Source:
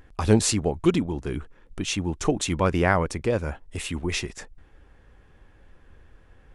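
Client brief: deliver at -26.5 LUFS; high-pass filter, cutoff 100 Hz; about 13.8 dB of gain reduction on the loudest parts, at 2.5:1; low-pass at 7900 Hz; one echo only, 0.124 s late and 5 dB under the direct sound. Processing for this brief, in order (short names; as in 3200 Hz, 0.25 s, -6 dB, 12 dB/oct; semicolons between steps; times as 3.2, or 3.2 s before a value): HPF 100 Hz; LPF 7900 Hz; compressor 2.5:1, threshold -35 dBFS; echo 0.124 s -5 dB; gain +8.5 dB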